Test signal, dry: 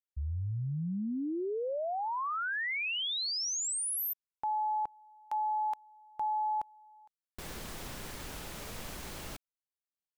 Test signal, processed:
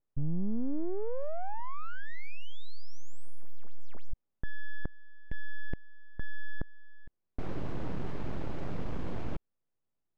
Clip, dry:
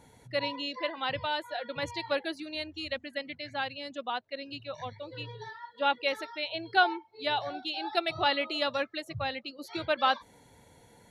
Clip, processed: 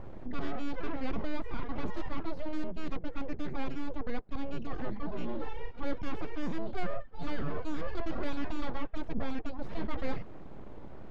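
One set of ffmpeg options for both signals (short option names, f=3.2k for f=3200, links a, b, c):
-af "aeval=exprs='abs(val(0))':c=same,adynamicsmooth=sensitivity=1:basefreq=2.4k,tiltshelf=f=680:g=7.5,areverse,acompressor=threshold=-38dB:ratio=5:attack=3.7:release=37:knee=6:detection=peak,areverse,volume=12dB"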